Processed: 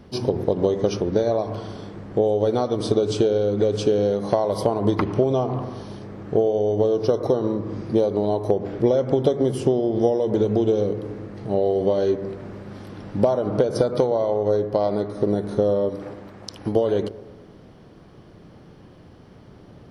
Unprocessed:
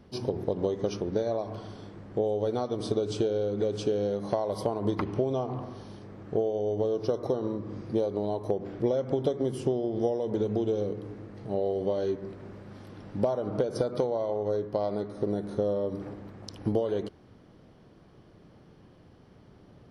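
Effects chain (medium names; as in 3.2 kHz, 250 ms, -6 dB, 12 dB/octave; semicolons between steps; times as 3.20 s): 15.89–16.76 s: bass shelf 400 Hz -7.5 dB; bucket-brigade echo 115 ms, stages 1024, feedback 58%, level -17.5 dB; trim +8 dB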